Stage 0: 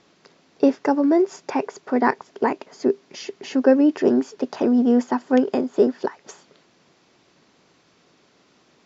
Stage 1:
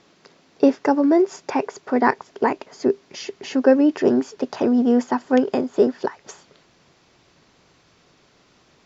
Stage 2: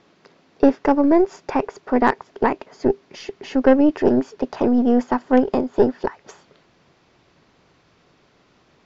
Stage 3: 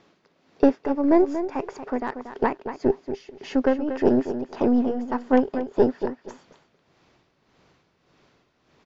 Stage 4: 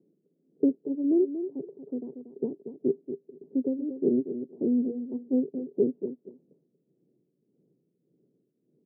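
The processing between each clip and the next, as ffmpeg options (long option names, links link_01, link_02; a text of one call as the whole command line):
ffmpeg -i in.wav -af "asubboost=boost=3.5:cutoff=110,volume=2dB" out.wav
ffmpeg -i in.wav -af "aeval=exprs='0.891*(cos(1*acos(clip(val(0)/0.891,-1,1)))-cos(1*PI/2))+0.0708*(cos(6*acos(clip(val(0)/0.891,-1,1)))-cos(6*PI/2))':channel_layout=same,aemphasis=mode=reproduction:type=50fm" out.wav
ffmpeg -i in.wav -filter_complex "[0:a]tremolo=f=1.7:d=0.74,asplit=2[link_01][link_02];[link_02]adelay=234,lowpass=frequency=4500:poles=1,volume=-10dB,asplit=2[link_03][link_04];[link_04]adelay=234,lowpass=frequency=4500:poles=1,volume=0.16[link_05];[link_01][link_03][link_05]amix=inputs=3:normalize=0,volume=-2dB" out.wav
ffmpeg -i in.wav -af "asuperpass=centerf=250:order=8:qfactor=0.79,volume=-4.5dB" out.wav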